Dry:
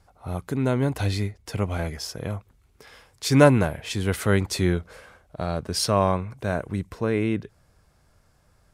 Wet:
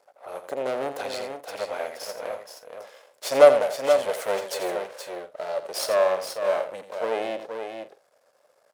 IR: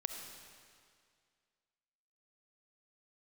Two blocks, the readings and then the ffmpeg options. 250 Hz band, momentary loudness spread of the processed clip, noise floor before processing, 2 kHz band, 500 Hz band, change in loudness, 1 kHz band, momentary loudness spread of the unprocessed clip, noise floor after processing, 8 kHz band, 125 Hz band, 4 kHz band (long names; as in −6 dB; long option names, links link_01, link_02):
−15.0 dB, 17 LU, −62 dBFS, −2.5 dB, +4.0 dB, −0.5 dB, +0.5 dB, 14 LU, −65 dBFS, −3.5 dB, below −25 dB, −3.0 dB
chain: -af "aeval=exprs='max(val(0),0)':channel_layout=same,highpass=frequency=550:width_type=q:width=4.9,aecho=1:1:85|474|519:0.299|0.447|0.119"